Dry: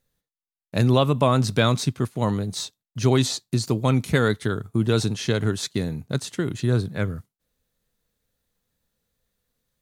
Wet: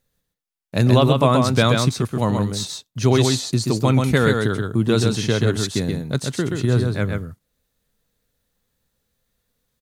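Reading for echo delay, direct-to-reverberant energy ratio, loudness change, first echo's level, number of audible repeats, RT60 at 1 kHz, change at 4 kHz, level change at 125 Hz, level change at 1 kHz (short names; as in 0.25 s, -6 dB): 0.13 s, none, +4.0 dB, -4.0 dB, 1, none, +4.0 dB, +4.0 dB, +4.0 dB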